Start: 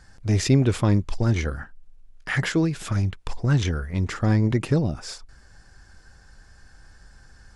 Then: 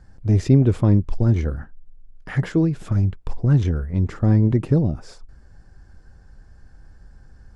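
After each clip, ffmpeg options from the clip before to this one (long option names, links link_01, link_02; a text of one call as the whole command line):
ffmpeg -i in.wav -af "tiltshelf=frequency=970:gain=8,volume=-3.5dB" out.wav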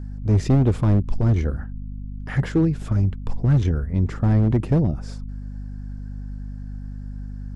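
ffmpeg -i in.wav -af "asoftclip=type=hard:threshold=-12dB,aeval=exprs='val(0)+0.0282*(sin(2*PI*50*n/s)+sin(2*PI*2*50*n/s)/2+sin(2*PI*3*50*n/s)/3+sin(2*PI*4*50*n/s)/4+sin(2*PI*5*50*n/s)/5)':channel_layout=same" out.wav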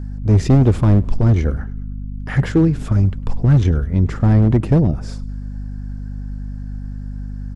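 ffmpeg -i in.wav -filter_complex "[0:a]asplit=5[link_01][link_02][link_03][link_04][link_05];[link_02]adelay=102,afreqshift=-33,volume=-22dB[link_06];[link_03]adelay=204,afreqshift=-66,volume=-27.2dB[link_07];[link_04]adelay=306,afreqshift=-99,volume=-32.4dB[link_08];[link_05]adelay=408,afreqshift=-132,volume=-37.6dB[link_09];[link_01][link_06][link_07][link_08][link_09]amix=inputs=5:normalize=0,volume=5dB" out.wav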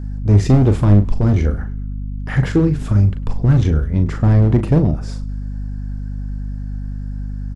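ffmpeg -i in.wav -filter_complex "[0:a]asplit=2[link_01][link_02];[link_02]adelay=39,volume=-8.5dB[link_03];[link_01][link_03]amix=inputs=2:normalize=0" out.wav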